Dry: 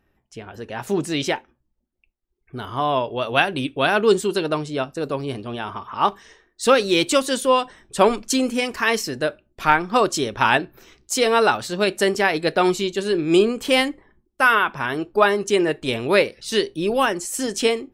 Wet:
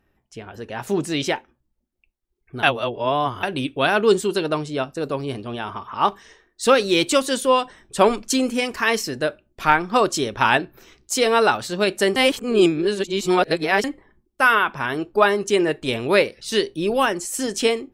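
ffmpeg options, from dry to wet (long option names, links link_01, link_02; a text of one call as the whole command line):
ffmpeg -i in.wav -filter_complex "[0:a]asplit=5[link_01][link_02][link_03][link_04][link_05];[link_01]atrim=end=2.632[link_06];[link_02]atrim=start=2.628:end=3.432,asetpts=PTS-STARTPTS,areverse[link_07];[link_03]atrim=start=3.428:end=12.162[link_08];[link_04]atrim=start=12.158:end=13.842,asetpts=PTS-STARTPTS,areverse[link_09];[link_05]atrim=start=13.838[link_10];[link_06][link_07]acrossfade=duration=0.004:curve1=hsin:curve2=hsin[link_11];[link_11][link_08]acrossfade=duration=0.004:curve1=hsin:curve2=hsin[link_12];[link_12][link_09]acrossfade=duration=0.004:curve1=hsin:curve2=hsin[link_13];[link_13][link_10]acrossfade=duration=0.004:curve1=hsin:curve2=hsin" out.wav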